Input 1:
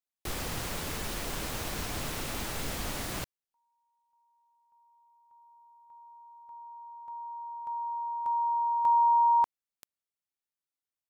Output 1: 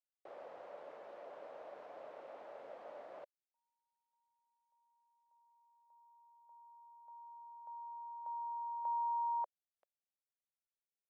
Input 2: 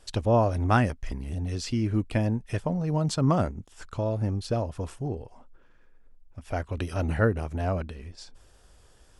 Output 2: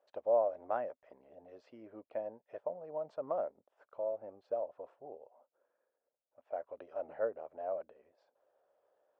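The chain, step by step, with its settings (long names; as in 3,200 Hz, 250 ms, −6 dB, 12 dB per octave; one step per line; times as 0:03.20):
four-pole ladder band-pass 640 Hz, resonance 65%
level −2 dB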